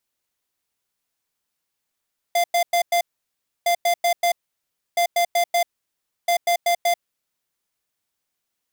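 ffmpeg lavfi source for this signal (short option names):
-f lavfi -i "aevalsrc='0.119*(2*lt(mod(693*t,1),0.5)-1)*clip(min(mod(mod(t,1.31),0.19),0.09-mod(mod(t,1.31),0.19))/0.005,0,1)*lt(mod(t,1.31),0.76)':d=5.24:s=44100"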